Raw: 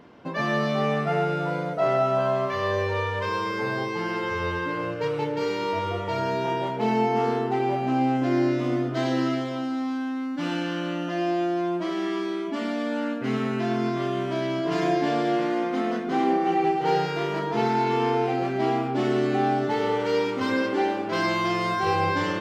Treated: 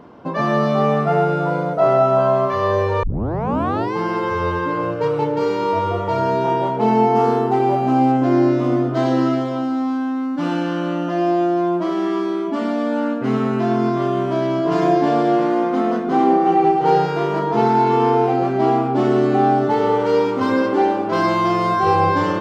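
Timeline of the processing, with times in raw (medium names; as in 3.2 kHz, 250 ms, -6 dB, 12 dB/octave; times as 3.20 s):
3.03 s: tape start 0.91 s
7.15–8.12 s: treble shelf 6.4 kHz +7.5 dB
whole clip: resonant high shelf 1.5 kHz -6 dB, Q 1.5; trim +7 dB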